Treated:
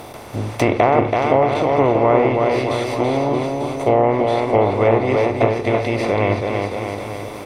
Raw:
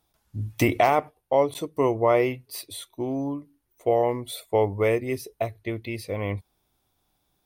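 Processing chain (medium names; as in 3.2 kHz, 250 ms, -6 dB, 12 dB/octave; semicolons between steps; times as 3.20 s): spectral levelling over time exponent 0.4; bouncing-ball echo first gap 330 ms, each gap 0.9×, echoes 5; low-pass that closes with the level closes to 1.9 kHz, closed at -10.5 dBFS; trim +1 dB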